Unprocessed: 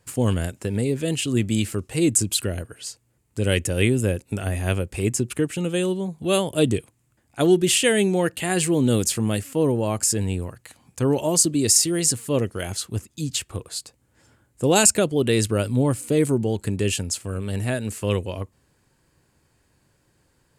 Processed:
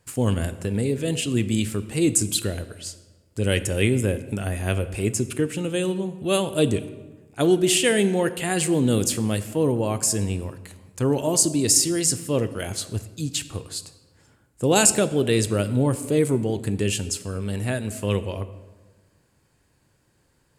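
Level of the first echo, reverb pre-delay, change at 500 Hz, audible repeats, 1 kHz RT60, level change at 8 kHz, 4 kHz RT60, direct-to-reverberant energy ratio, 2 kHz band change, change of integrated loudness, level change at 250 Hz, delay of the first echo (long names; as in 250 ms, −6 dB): no echo audible, 9 ms, −0.5 dB, no echo audible, 1.3 s, −1.0 dB, 0.90 s, 11.5 dB, −0.5 dB, −0.5 dB, −0.5 dB, no echo audible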